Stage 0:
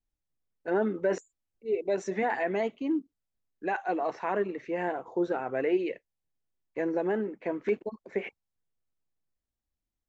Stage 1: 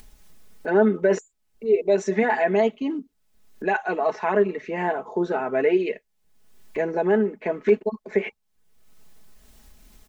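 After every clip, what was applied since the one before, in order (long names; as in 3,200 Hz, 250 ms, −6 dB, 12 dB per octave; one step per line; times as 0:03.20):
comb filter 4.7 ms, depth 64%
upward compression, threshold −33 dBFS
level +6 dB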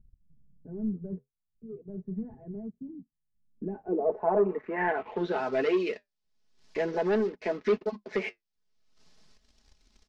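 leveller curve on the samples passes 2
flanger 0.41 Hz, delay 1.9 ms, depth 9.4 ms, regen −59%
low-pass filter sweep 140 Hz → 5,100 Hz, 0:03.38–0:05.46
level −7.5 dB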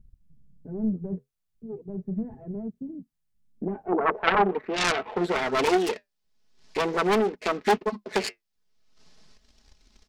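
phase distortion by the signal itself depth 0.72 ms
level +5 dB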